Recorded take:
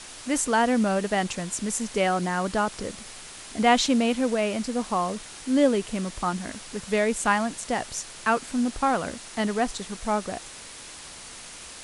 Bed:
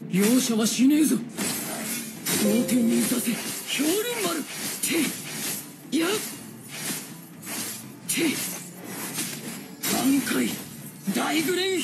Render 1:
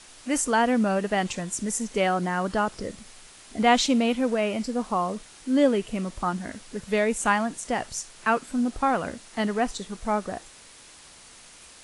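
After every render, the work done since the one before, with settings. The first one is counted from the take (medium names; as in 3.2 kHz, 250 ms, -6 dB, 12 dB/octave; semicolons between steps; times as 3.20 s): noise print and reduce 7 dB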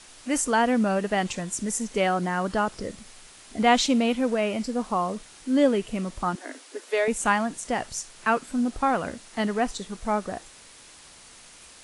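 6.35–7.08 s: steep high-pass 260 Hz 96 dB/octave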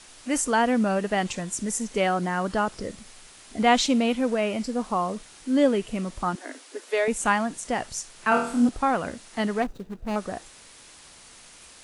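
8.29–8.69 s: flutter echo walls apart 4.3 m, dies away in 0.52 s; 9.62–10.16 s: median filter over 41 samples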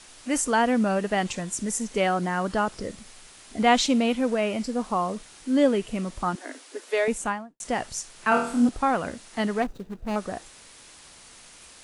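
7.07–7.60 s: studio fade out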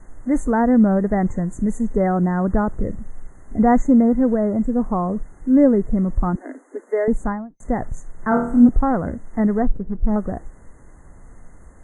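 FFT band-reject 2.1–6.2 kHz; tilt EQ -4.5 dB/octave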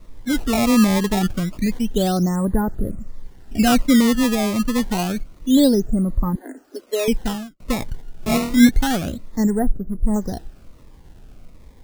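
decimation with a swept rate 17×, swing 160% 0.28 Hz; Shepard-style phaser falling 1.3 Hz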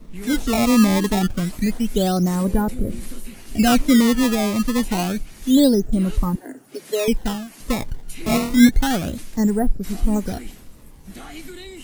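add bed -13.5 dB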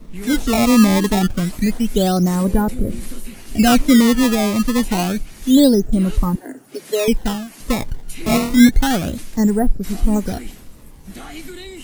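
trim +3 dB; peak limiter -2 dBFS, peak gain reduction 1.5 dB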